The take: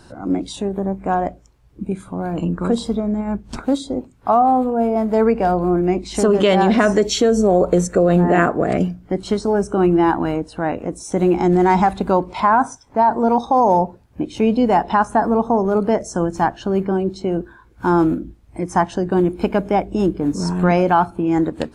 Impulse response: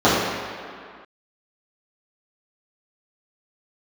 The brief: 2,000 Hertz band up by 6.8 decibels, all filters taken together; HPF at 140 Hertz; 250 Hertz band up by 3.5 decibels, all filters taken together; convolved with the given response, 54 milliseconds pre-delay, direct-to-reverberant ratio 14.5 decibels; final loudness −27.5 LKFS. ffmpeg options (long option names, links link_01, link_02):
-filter_complex "[0:a]highpass=140,equalizer=frequency=250:width_type=o:gain=5.5,equalizer=frequency=2000:width_type=o:gain=9,asplit=2[link_01][link_02];[1:a]atrim=start_sample=2205,adelay=54[link_03];[link_02][link_03]afir=irnorm=-1:irlink=0,volume=-41dB[link_04];[link_01][link_04]amix=inputs=2:normalize=0,volume=-12dB"